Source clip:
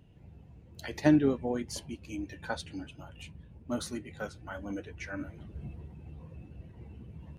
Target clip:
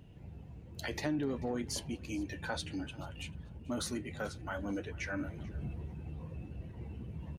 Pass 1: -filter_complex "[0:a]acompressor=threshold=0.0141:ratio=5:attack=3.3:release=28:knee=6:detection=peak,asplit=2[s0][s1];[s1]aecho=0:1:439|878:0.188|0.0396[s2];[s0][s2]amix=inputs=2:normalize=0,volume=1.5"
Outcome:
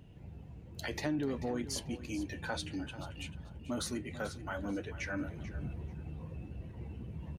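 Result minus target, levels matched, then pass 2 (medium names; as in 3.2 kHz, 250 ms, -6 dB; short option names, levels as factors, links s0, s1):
echo-to-direct +7.5 dB
-filter_complex "[0:a]acompressor=threshold=0.0141:ratio=5:attack=3.3:release=28:knee=6:detection=peak,asplit=2[s0][s1];[s1]aecho=0:1:439|878:0.0794|0.0167[s2];[s0][s2]amix=inputs=2:normalize=0,volume=1.5"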